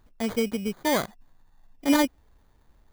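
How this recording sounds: aliases and images of a low sample rate 2.7 kHz, jitter 0%

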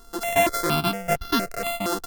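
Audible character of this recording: a buzz of ramps at a fixed pitch in blocks of 64 samples; notches that jump at a steady rate 4.3 Hz 620–2300 Hz

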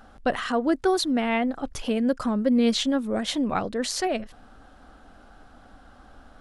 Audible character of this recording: noise floor -52 dBFS; spectral tilt -4.0 dB/octave

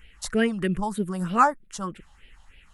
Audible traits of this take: phasing stages 4, 3.2 Hz, lowest notch 370–1100 Hz

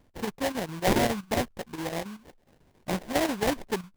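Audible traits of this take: chopped level 7.3 Hz, depth 60%, duty 80%; aliases and images of a low sample rate 1.3 kHz, jitter 20%

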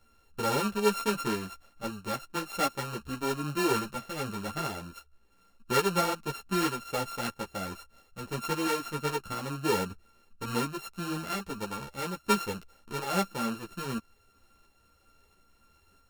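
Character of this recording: a buzz of ramps at a fixed pitch in blocks of 32 samples; tremolo saw up 1.5 Hz, depth 30%; a shimmering, thickened sound

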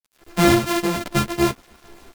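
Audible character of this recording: a buzz of ramps at a fixed pitch in blocks of 128 samples; random-step tremolo 3.8 Hz; a quantiser's noise floor 8-bit, dither none; a shimmering, thickened sound

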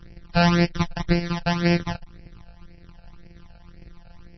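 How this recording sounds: a buzz of ramps at a fixed pitch in blocks of 256 samples; phasing stages 12, 1.9 Hz, lowest notch 340–1200 Hz; MP3

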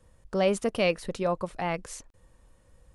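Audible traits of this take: noise floor -62 dBFS; spectral tilt -5.0 dB/octave

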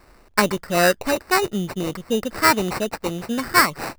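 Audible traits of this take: aliases and images of a low sample rate 3.3 kHz, jitter 0%

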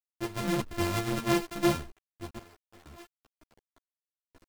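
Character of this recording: a buzz of ramps at a fixed pitch in blocks of 128 samples; random-step tremolo 2.1 Hz, depth 95%; a quantiser's noise floor 8-bit, dither none; a shimmering, thickened sound

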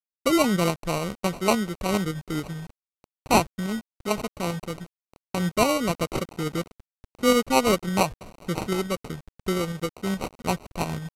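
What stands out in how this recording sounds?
a quantiser's noise floor 8-bit, dither none; tremolo saw up 7.1 Hz, depth 40%; aliases and images of a low sample rate 1.7 kHz, jitter 0%; SBC

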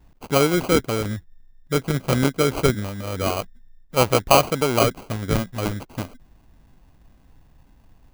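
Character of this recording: aliases and images of a low sample rate 1.8 kHz, jitter 0%

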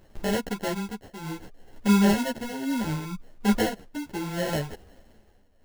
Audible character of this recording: tremolo triangle 0.68 Hz, depth 85%; aliases and images of a low sample rate 1.2 kHz, jitter 0%; a shimmering, thickened sound

